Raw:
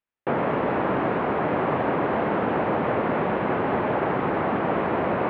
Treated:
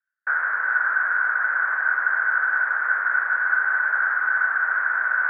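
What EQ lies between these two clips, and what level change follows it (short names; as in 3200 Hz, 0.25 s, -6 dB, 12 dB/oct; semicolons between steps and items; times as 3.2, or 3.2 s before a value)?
resonant high-pass 1500 Hz, resonance Q 16; air absorption 150 m; resonant high shelf 2200 Hz -8 dB, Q 3; -7.5 dB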